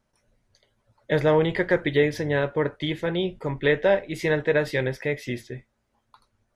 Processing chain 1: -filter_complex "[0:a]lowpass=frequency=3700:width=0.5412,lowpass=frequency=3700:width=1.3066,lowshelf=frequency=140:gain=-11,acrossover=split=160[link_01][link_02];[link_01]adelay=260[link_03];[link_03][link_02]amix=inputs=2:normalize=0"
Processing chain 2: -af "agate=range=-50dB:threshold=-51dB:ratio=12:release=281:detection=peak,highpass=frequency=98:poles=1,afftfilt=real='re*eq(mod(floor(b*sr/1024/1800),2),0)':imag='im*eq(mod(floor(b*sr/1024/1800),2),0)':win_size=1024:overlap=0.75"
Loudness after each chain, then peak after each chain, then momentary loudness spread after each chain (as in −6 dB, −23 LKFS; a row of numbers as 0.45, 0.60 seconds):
−25.5, −25.0 LKFS; −9.0, −9.5 dBFS; 10, 10 LU